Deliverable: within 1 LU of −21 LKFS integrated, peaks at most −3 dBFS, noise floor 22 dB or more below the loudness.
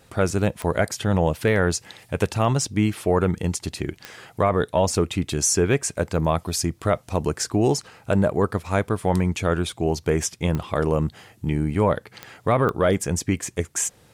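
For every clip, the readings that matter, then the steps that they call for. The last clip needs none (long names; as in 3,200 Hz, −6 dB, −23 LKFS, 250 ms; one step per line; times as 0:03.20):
number of clicks 5; integrated loudness −23.5 LKFS; sample peak −9.0 dBFS; target loudness −21.0 LKFS
→ click removal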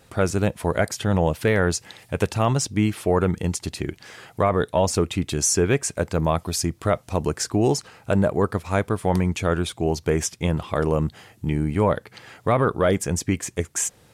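number of clicks 0; integrated loudness −23.5 LKFS; sample peak −9.0 dBFS; target loudness −21.0 LKFS
→ level +2.5 dB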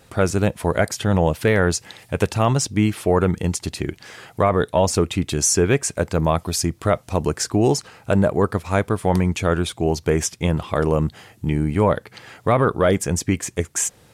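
integrated loudness −21.0 LKFS; sample peak −6.5 dBFS; background noise floor −53 dBFS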